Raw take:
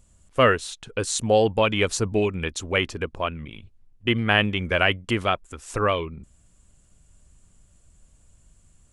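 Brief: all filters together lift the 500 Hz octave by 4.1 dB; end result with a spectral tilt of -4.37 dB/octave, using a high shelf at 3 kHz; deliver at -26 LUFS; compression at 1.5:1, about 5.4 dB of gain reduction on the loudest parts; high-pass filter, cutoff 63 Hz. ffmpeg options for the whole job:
-af "highpass=63,equalizer=f=500:t=o:g=5,highshelf=f=3000:g=-8,acompressor=threshold=0.0562:ratio=1.5"

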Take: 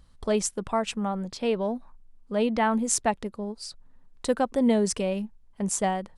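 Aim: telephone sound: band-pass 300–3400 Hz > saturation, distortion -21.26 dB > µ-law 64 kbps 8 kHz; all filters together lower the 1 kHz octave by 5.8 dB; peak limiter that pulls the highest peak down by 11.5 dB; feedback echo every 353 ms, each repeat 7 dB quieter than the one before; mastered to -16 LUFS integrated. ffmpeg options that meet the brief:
-af "equalizer=f=1000:t=o:g=-8,alimiter=limit=0.112:level=0:latency=1,highpass=300,lowpass=3400,aecho=1:1:353|706|1059|1412|1765:0.447|0.201|0.0905|0.0407|0.0183,asoftclip=threshold=0.0891,volume=7.94" -ar 8000 -c:a pcm_mulaw

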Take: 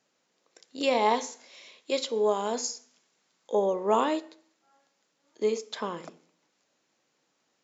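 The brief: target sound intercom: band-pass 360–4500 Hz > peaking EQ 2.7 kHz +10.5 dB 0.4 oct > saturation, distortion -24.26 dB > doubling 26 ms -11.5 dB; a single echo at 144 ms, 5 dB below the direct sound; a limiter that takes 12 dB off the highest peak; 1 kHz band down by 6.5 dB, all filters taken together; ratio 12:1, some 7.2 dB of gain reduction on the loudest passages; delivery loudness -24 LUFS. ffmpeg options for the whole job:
-filter_complex "[0:a]equalizer=f=1000:t=o:g=-8,acompressor=threshold=0.0355:ratio=12,alimiter=level_in=2.24:limit=0.0631:level=0:latency=1,volume=0.447,highpass=360,lowpass=4500,equalizer=f=2700:t=o:w=0.4:g=10.5,aecho=1:1:144:0.562,asoftclip=threshold=0.0355,asplit=2[s0][s1];[s1]adelay=26,volume=0.266[s2];[s0][s2]amix=inputs=2:normalize=0,volume=7.5"

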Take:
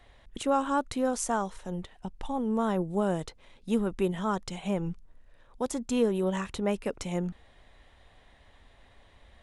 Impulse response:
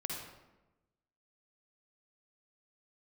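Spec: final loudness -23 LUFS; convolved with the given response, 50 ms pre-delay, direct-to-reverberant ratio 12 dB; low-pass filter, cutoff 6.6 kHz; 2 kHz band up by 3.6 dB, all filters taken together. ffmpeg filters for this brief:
-filter_complex "[0:a]lowpass=6600,equalizer=f=2000:t=o:g=5,asplit=2[s0][s1];[1:a]atrim=start_sample=2205,adelay=50[s2];[s1][s2]afir=irnorm=-1:irlink=0,volume=0.224[s3];[s0][s3]amix=inputs=2:normalize=0,volume=2.24"

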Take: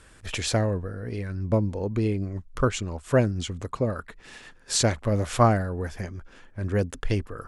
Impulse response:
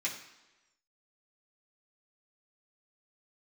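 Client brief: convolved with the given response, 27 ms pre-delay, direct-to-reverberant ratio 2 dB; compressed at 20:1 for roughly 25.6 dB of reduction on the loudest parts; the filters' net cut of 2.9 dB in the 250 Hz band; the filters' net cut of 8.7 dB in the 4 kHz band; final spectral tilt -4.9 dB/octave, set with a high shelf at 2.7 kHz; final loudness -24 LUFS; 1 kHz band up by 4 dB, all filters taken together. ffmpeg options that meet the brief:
-filter_complex "[0:a]equalizer=f=250:t=o:g=-4,equalizer=f=1000:t=o:g=6.5,highshelf=f=2700:g=-4,equalizer=f=4000:t=o:g=-8,acompressor=threshold=0.0158:ratio=20,asplit=2[s0][s1];[1:a]atrim=start_sample=2205,adelay=27[s2];[s1][s2]afir=irnorm=-1:irlink=0,volume=0.473[s3];[s0][s3]amix=inputs=2:normalize=0,volume=7.08"

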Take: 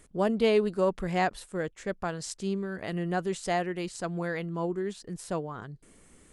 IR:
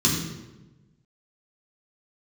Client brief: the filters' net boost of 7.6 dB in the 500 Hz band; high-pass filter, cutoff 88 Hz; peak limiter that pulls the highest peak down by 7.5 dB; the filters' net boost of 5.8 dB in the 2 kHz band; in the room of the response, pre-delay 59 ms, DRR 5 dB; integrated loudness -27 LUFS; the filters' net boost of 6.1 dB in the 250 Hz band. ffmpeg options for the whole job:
-filter_complex "[0:a]highpass=88,equalizer=f=250:t=o:g=7,equalizer=f=500:t=o:g=7,equalizer=f=2000:t=o:g=6.5,alimiter=limit=0.188:level=0:latency=1,asplit=2[s0][s1];[1:a]atrim=start_sample=2205,adelay=59[s2];[s1][s2]afir=irnorm=-1:irlink=0,volume=0.112[s3];[s0][s3]amix=inputs=2:normalize=0,volume=0.531"

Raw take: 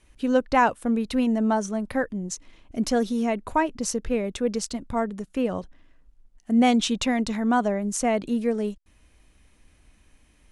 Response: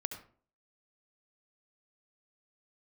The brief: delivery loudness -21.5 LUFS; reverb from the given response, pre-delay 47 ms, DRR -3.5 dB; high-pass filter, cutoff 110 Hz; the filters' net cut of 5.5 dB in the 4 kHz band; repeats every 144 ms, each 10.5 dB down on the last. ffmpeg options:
-filter_complex "[0:a]highpass=110,equalizer=f=4000:t=o:g=-7.5,aecho=1:1:144|288|432:0.299|0.0896|0.0269,asplit=2[s0][s1];[1:a]atrim=start_sample=2205,adelay=47[s2];[s1][s2]afir=irnorm=-1:irlink=0,volume=1.5[s3];[s0][s3]amix=inputs=2:normalize=0,volume=0.794"

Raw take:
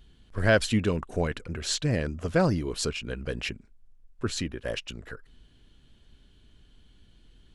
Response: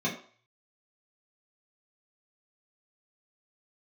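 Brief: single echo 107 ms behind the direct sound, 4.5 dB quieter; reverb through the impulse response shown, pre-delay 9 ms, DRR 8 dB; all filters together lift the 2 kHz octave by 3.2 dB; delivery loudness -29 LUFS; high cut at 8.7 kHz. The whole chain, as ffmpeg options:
-filter_complex "[0:a]lowpass=8700,equalizer=f=2000:t=o:g=4.5,aecho=1:1:107:0.596,asplit=2[s0][s1];[1:a]atrim=start_sample=2205,adelay=9[s2];[s1][s2]afir=irnorm=-1:irlink=0,volume=0.15[s3];[s0][s3]amix=inputs=2:normalize=0,volume=0.668"

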